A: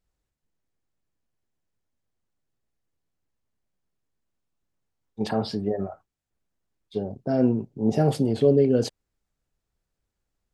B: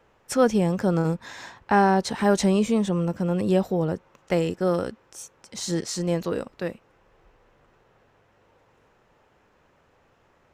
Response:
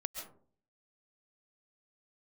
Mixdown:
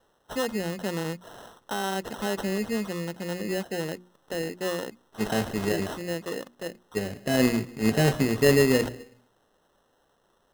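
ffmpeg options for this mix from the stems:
-filter_complex "[0:a]acrusher=bits=3:mode=log:mix=0:aa=0.000001,volume=-2dB,asplit=2[link_01][link_02];[link_02]volume=-13.5dB[link_03];[1:a]highpass=190,alimiter=limit=-14.5dB:level=0:latency=1:release=57,volume=-5dB[link_04];[2:a]atrim=start_sample=2205[link_05];[link_03][link_05]afir=irnorm=-1:irlink=0[link_06];[link_01][link_04][link_06]amix=inputs=3:normalize=0,acrusher=samples=19:mix=1:aa=0.000001,bandreject=frequency=60:width_type=h:width=6,bandreject=frequency=120:width_type=h:width=6,bandreject=frequency=180:width_type=h:width=6,bandreject=frequency=240:width_type=h:width=6,bandreject=frequency=300:width_type=h:width=6,bandreject=frequency=360:width_type=h:width=6"

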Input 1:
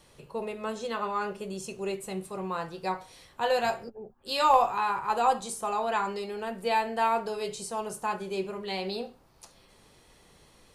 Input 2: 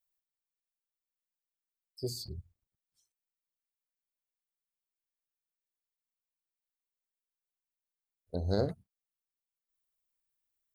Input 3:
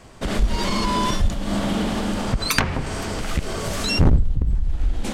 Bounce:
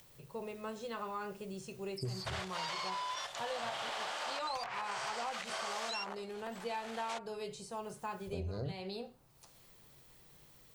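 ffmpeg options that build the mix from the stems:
ffmpeg -i stem1.wav -i stem2.wav -i stem3.wav -filter_complex "[0:a]volume=-8.5dB[link_01];[1:a]alimiter=level_in=5.5dB:limit=-24dB:level=0:latency=1:release=16,volume=-5.5dB,volume=1.5dB[link_02];[2:a]acompressor=threshold=-18dB:ratio=8,highpass=frequency=680:width=0.5412,highpass=frequency=680:width=1.3066,aeval=exprs='(mod(5.01*val(0)+1,2)-1)/5.01':channel_layout=same,adelay=2050,volume=-1.5dB[link_03];[link_02][link_03]amix=inputs=2:normalize=0,acompressor=mode=upward:threshold=-39dB:ratio=2.5,alimiter=level_in=0.5dB:limit=-24dB:level=0:latency=1:release=51,volume=-0.5dB,volume=0dB[link_04];[link_01][link_04]amix=inputs=2:normalize=0,acrossover=split=7000[link_05][link_06];[link_06]acompressor=threshold=-58dB:ratio=4:attack=1:release=60[link_07];[link_05][link_07]amix=inputs=2:normalize=0,equalizer=frequency=130:width=2.5:gain=9.5,acompressor=threshold=-36dB:ratio=6" out.wav

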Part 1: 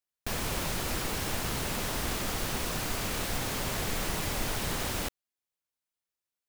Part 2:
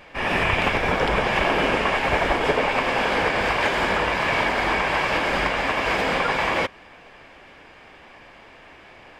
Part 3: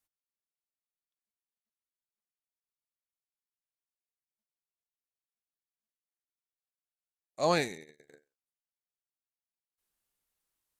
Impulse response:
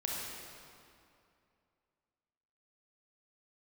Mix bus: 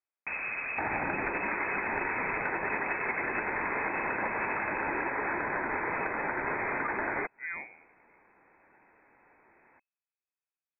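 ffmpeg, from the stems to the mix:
-filter_complex "[0:a]volume=-0.5dB[link_01];[1:a]crystalizer=i=8:c=0,afwtdn=0.0708,adelay=600,volume=-3.5dB[link_02];[2:a]volume=-10.5dB[link_03];[link_01][link_02][link_03]amix=inputs=3:normalize=0,lowpass=frequency=2200:width_type=q:width=0.5098,lowpass=frequency=2200:width_type=q:width=0.6013,lowpass=frequency=2200:width_type=q:width=0.9,lowpass=frequency=2200:width_type=q:width=2.563,afreqshift=-2600,acompressor=threshold=-31dB:ratio=4"

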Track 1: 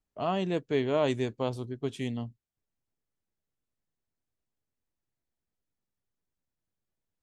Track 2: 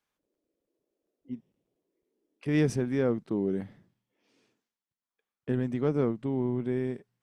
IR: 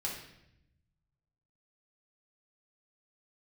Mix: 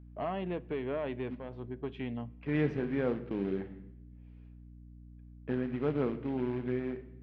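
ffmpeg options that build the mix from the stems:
-filter_complex "[0:a]acompressor=threshold=-29dB:ratio=6,asoftclip=type=tanh:threshold=-26.5dB,volume=0dB,asplit=2[link_01][link_02];[link_02]volume=-20dB[link_03];[1:a]highshelf=frequency=9000:gain=11,acrusher=bits=4:mode=log:mix=0:aa=0.000001,volume=-4.5dB,asplit=3[link_04][link_05][link_06];[link_05]volume=-8.5dB[link_07];[link_06]apad=whole_len=318607[link_08];[link_01][link_08]sidechaincompress=threshold=-46dB:ratio=8:attack=23:release=545[link_09];[2:a]atrim=start_sample=2205[link_10];[link_03][link_07]amix=inputs=2:normalize=0[link_11];[link_11][link_10]afir=irnorm=-1:irlink=0[link_12];[link_09][link_04][link_12]amix=inputs=3:normalize=0,lowpass=frequency=2700:width=0.5412,lowpass=frequency=2700:width=1.3066,lowshelf=frequency=140:gain=-8,aeval=exprs='val(0)+0.00316*(sin(2*PI*60*n/s)+sin(2*PI*2*60*n/s)/2+sin(2*PI*3*60*n/s)/3+sin(2*PI*4*60*n/s)/4+sin(2*PI*5*60*n/s)/5)':channel_layout=same"

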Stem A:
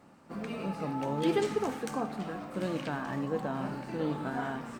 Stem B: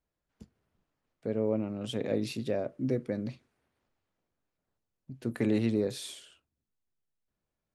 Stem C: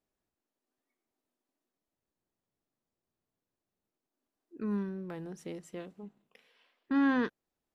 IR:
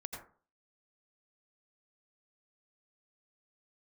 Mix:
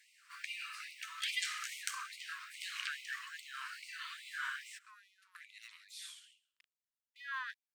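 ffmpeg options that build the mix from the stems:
-filter_complex "[0:a]highpass=frequency=1400:width=0.5412,highpass=frequency=1400:width=1.3066,volume=3dB,asplit=2[link_01][link_02];[link_02]volume=-21.5dB[link_03];[1:a]volume=-9.5dB,afade=type=in:start_time=5.16:duration=0.62:silence=0.316228,asplit=2[link_04][link_05];[link_05]volume=-19dB[link_06];[2:a]aeval=exprs='sgn(val(0))*max(abs(val(0))-0.00133,0)':channel_layout=same,adelay=250,volume=-6dB[link_07];[link_03][link_06]amix=inputs=2:normalize=0,aecho=0:1:134|268|402:1|0.2|0.04[link_08];[link_01][link_04][link_07][link_08]amix=inputs=4:normalize=0,equalizer=frequency=4500:width=0.3:gain=2.5,afftfilt=real='re*gte(b*sr/1024,910*pow(2000/910,0.5+0.5*sin(2*PI*2.4*pts/sr)))':imag='im*gte(b*sr/1024,910*pow(2000/910,0.5+0.5*sin(2*PI*2.4*pts/sr)))':win_size=1024:overlap=0.75"

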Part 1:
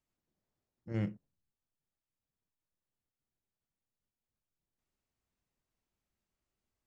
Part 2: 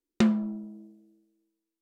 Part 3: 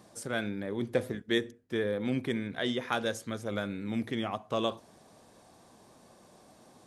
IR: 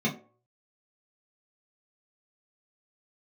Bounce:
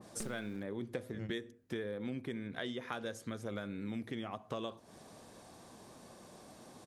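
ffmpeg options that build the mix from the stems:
-filter_complex "[0:a]adelay=250,volume=0dB[link_01];[1:a]acrusher=bits=3:dc=4:mix=0:aa=0.000001,volume=-12.5dB[link_02];[2:a]adynamicequalizer=threshold=0.00562:dfrequency=1900:dqfactor=0.7:tfrequency=1900:tqfactor=0.7:attack=5:release=100:ratio=0.375:range=2:mode=cutabove:tftype=highshelf,volume=3dB,asplit=2[link_03][link_04];[link_04]apad=whole_len=313677[link_05];[link_01][link_05]sidechaingate=range=-33dB:threshold=-42dB:ratio=16:detection=peak[link_06];[link_06][link_02][link_03]amix=inputs=3:normalize=0,equalizer=frequency=760:width_type=o:width=0.77:gain=-2,acompressor=threshold=-38dB:ratio=5"

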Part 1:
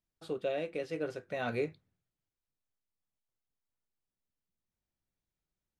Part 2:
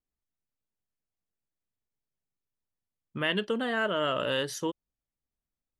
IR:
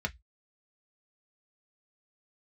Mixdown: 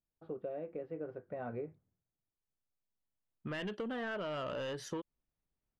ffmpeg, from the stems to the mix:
-filter_complex "[0:a]lowpass=1200,volume=-2.5dB,asplit=2[link_01][link_02];[1:a]asoftclip=type=tanh:threshold=-27dB,adelay=300,volume=1.5dB[link_03];[link_02]apad=whole_len=268984[link_04];[link_03][link_04]sidechaincompress=threshold=-55dB:ratio=8:attack=44:release=1500[link_05];[link_01][link_05]amix=inputs=2:normalize=0,aemphasis=mode=reproduction:type=75kf,acompressor=threshold=-37dB:ratio=6"

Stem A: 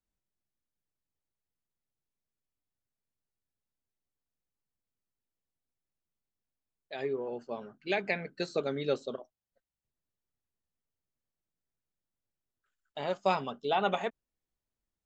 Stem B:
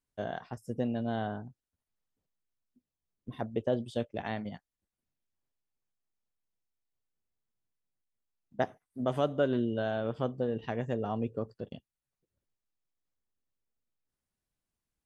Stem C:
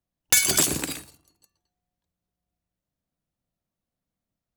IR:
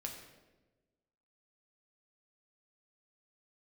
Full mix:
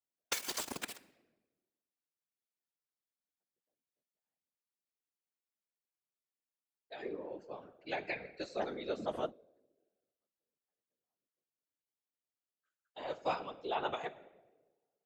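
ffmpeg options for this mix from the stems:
-filter_complex "[0:a]volume=-4dB,asplit=3[link_01][link_02][link_03];[link_02]volume=-4.5dB[link_04];[1:a]volume=-1.5dB[link_05];[2:a]lowpass=5900,acompressor=threshold=-30dB:ratio=10,aeval=exprs='val(0)*gte(abs(val(0)),0.0355)':channel_layout=same,volume=2.5dB,asplit=2[link_06][link_07];[link_07]volume=-8.5dB[link_08];[link_03]apad=whole_len=663938[link_09];[link_05][link_09]sidechaingate=range=-56dB:threshold=-56dB:ratio=16:detection=peak[link_10];[3:a]atrim=start_sample=2205[link_11];[link_04][link_08]amix=inputs=2:normalize=0[link_12];[link_12][link_11]afir=irnorm=-1:irlink=0[link_13];[link_01][link_10][link_06][link_13]amix=inputs=4:normalize=0,highpass=270,afftfilt=real='hypot(re,im)*cos(2*PI*random(0))':imag='hypot(re,im)*sin(2*PI*random(1))':win_size=512:overlap=0.75"

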